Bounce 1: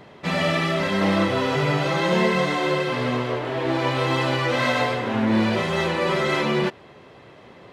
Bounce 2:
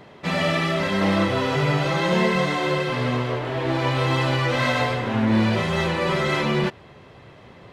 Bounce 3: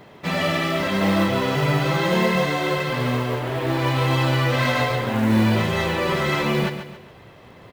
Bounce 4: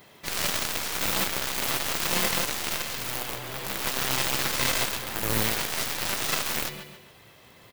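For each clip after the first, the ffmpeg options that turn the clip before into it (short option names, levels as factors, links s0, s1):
-af "asubboost=boost=2:cutoff=180"
-af "acrusher=bits=6:mode=log:mix=0:aa=0.000001,aecho=1:1:137|274|411|548:0.335|0.131|0.0509|0.0199"
-af "crystalizer=i=6:c=0,aeval=exprs='0.794*(cos(1*acos(clip(val(0)/0.794,-1,1)))-cos(1*PI/2))+0.0794*(cos(6*acos(clip(val(0)/0.794,-1,1)))-cos(6*PI/2))+0.2*(cos(7*acos(clip(val(0)/0.794,-1,1)))-cos(7*PI/2))':c=same,volume=0.398"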